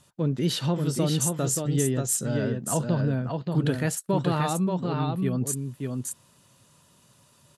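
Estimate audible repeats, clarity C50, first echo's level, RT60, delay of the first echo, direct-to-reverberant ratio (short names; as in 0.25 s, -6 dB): 1, none, -4.0 dB, none, 0.58 s, none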